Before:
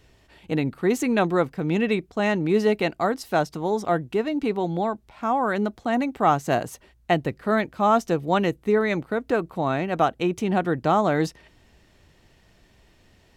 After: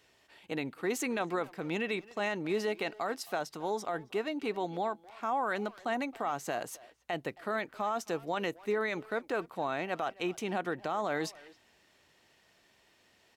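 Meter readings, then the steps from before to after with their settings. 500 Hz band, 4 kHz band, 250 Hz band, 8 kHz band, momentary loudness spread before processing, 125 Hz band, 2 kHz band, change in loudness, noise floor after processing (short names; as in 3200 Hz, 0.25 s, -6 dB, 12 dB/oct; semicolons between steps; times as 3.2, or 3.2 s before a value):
-11.0 dB, -6.5 dB, -13.5 dB, -4.0 dB, 5 LU, -17.0 dB, -7.0 dB, -11.0 dB, -67 dBFS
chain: HPF 650 Hz 6 dB/oct; limiter -19.5 dBFS, peak gain reduction 10.5 dB; speakerphone echo 0.27 s, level -18 dB; gain -3.5 dB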